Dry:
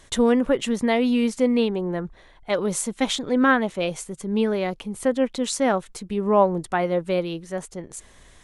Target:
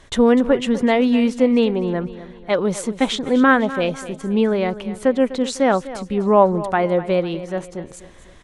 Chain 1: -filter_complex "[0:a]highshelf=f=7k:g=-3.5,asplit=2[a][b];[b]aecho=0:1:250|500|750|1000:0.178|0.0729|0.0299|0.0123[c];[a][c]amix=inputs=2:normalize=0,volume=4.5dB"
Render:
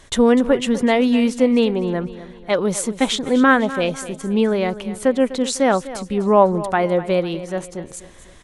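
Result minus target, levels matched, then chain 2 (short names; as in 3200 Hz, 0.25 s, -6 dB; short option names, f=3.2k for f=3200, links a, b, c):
8000 Hz band +6.0 dB
-filter_complex "[0:a]highshelf=f=7k:g=-14.5,asplit=2[a][b];[b]aecho=0:1:250|500|750|1000:0.178|0.0729|0.0299|0.0123[c];[a][c]amix=inputs=2:normalize=0,volume=4.5dB"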